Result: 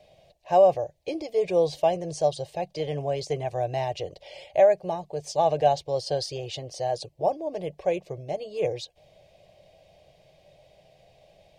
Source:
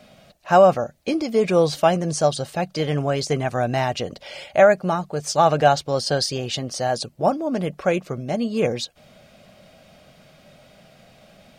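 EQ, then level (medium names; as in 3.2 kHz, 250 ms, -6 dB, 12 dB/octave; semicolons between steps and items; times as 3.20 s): treble shelf 5.3 kHz -11.5 dB; static phaser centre 560 Hz, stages 4; -3.5 dB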